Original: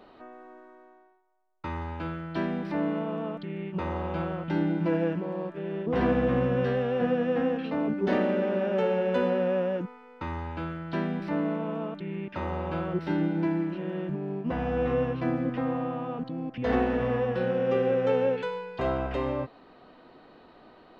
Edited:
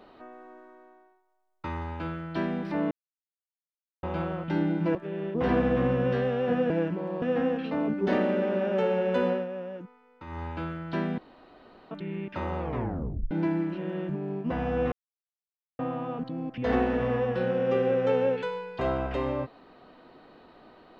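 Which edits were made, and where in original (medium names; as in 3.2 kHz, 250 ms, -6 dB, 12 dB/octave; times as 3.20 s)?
2.91–4.03 s: mute
4.95–5.47 s: move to 7.22 s
9.30–10.43 s: dip -9.5 dB, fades 0.17 s
11.18–11.91 s: room tone
12.59 s: tape stop 0.72 s
14.92–15.79 s: mute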